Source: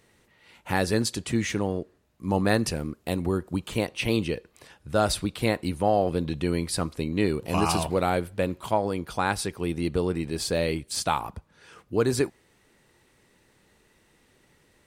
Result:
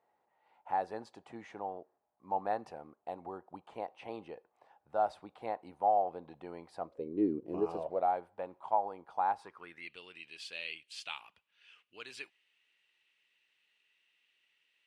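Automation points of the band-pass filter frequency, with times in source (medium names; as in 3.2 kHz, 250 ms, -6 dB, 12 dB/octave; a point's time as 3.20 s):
band-pass filter, Q 5.1
6.77 s 790 Hz
7.33 s 270 Hz
8.13 s 820 Hz
9.38 s 820 Hz
9.96 s 2.8 kHz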